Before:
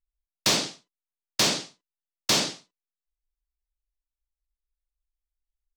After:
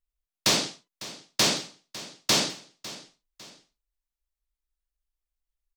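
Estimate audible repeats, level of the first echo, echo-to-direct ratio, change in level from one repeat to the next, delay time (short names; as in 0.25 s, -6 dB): 2, -17.0 dB, -16.5 dB, -8.0 dB, 0.552 s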